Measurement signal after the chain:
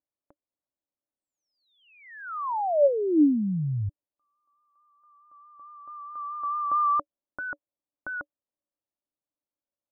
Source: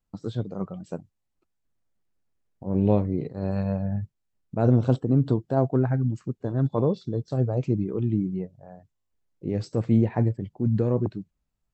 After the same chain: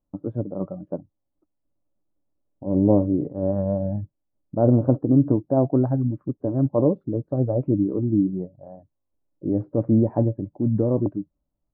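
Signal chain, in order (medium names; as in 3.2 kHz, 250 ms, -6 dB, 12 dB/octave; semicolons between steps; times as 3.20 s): vibrato 4.6 Hz 33 cents; low-pass 1.1 kHz 24 dB/octave; small resonant body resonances 300/570 Hz, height 12 dB, ringing for 65 ms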